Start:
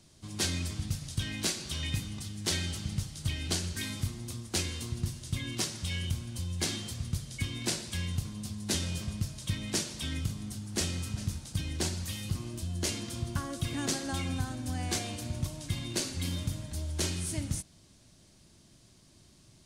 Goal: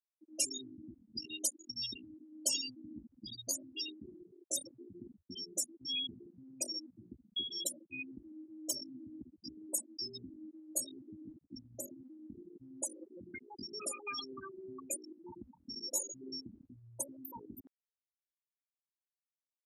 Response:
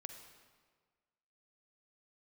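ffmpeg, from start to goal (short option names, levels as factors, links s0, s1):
-filter_complex "[0:a]aecho=1:1:4.9:0.95[s0];[1:a]atrim=start_sample=2205,afade=t=out:st=0.33:d=0.01,atrim=end_sample=14994[s1];[s0][s1]afir=irnorm=-1:irlink=0,afftfilt=real='re*gte(hypot(re,im),0.0501)':imag='im*gte(hypot(re,im),0.0501)':win_size=1024:overlap=0.75,highpass=f=1100:p=1,acrossover=split=1500[s2][s3];[s2]alimiter=level_in=10.6:limit=0.0631:level=0:latency=1:release=266,volume=0.0944[s4];[s4][s3]amix=inputs=2:normalize=0,asetrate=66075,aresample=44100,atempo=0.66742,areverse,acompressor=mode=upward:threshold=0.00178:ratio=2.5,areverse,volume=2.37"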